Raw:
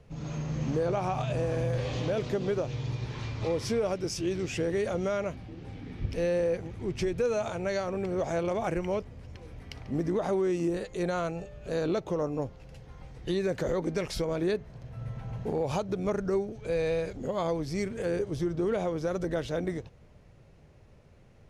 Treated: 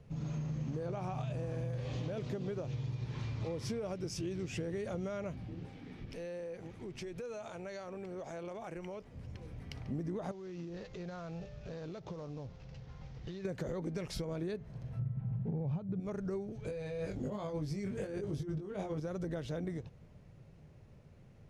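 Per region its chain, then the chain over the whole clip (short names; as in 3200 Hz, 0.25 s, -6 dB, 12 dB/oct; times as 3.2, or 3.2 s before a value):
5.66–9.14 bell 80 Hz -13 dB 2.7 oct + compressor 3:1, threshold -39 dBFS
10.31–13.45 CVSD 32 kbps + compressor 12:1, threshold -36 dBFS + bell 300 Hz -4 dB 0.99 oct
14.99–16 LPF 2600 Hz + bell 150 Hz +14.5 dB 1.3 oct
16.67–19 negative-ratio compressor -32 dBFS, ratio -0.5 + doubler 20 ms -4 dB
whole clip: bell 150 Hz +7 dB 1.5 oct; compressor, threshold -30 dBFS; gain -5 dB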